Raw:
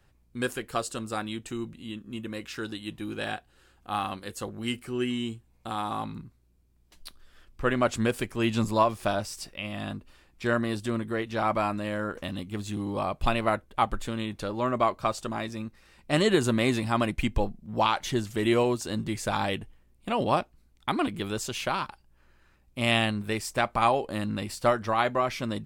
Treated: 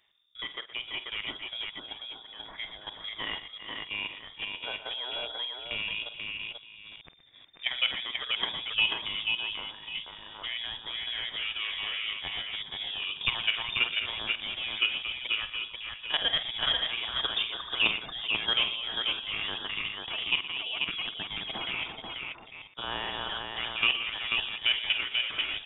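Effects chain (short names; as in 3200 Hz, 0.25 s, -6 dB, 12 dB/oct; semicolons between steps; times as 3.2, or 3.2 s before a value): reverse delay 0.435 s, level -5 dB; level quantiser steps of 11 dB; low shelf 250 Hz -10 dB; on a send: tapped delay 49/120/488 ms -12.5/-14/-4 dB; on the sum: inverted band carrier 3600 Hz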